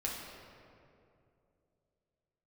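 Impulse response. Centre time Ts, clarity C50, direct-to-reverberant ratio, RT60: 103 ms, 1.0 dB, −3.5 dB, 2.6 s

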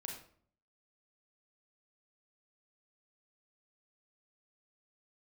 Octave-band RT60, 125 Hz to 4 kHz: 0.80, 0.70, 0.60, 0.50, 0.45, 0.35 seconds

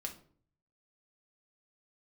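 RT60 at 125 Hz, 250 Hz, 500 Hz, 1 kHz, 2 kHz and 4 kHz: 0.90, 0.65, 0.55, 0.45, 0.35, 0.30 seconds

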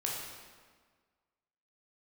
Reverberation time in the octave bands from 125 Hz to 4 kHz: 1.6, 1.7, 1.6, 1.6, 1.4, 1.2 seconds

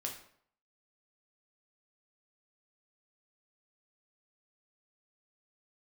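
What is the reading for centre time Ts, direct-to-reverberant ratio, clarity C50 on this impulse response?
23 ms, 0.0 dB, 7.0 dB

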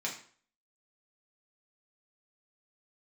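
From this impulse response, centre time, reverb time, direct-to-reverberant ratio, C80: 22 ms, 0.50 s, −3.5 dB, 12.0 dB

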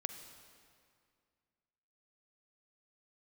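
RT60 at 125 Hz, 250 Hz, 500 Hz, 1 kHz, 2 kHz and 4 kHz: 2.5, 2.5, 2.2, 2.2, 2.0, 1.8 seconds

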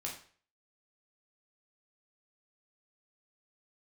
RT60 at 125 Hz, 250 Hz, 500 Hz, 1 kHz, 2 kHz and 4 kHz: 0.45, 0.40, 0.45, 0.45, 0.45, 0.40 seconds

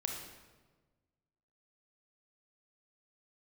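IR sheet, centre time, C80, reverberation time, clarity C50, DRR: 48 ms, 5.5 dB, 1.3 s, 3.0 dB, 1.0 dB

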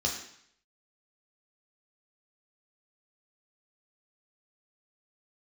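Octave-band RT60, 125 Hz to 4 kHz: 0.70, 0.65, 0.65, 0.70, 0.70, 0.70 seconds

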